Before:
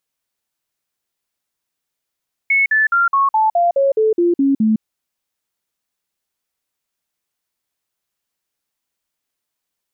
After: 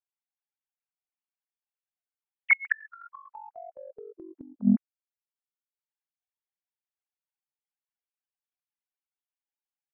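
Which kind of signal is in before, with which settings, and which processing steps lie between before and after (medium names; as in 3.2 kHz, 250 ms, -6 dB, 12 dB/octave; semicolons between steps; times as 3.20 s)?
stepped sine 2.2 kHz down, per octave 3, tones 11, 0.16 s, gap 0.05 s -11 dBFS
formants replaced by sine waves; transient shaper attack +4 dB, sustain -8 dB; inverted gate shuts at -10 dBFS, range -33 dB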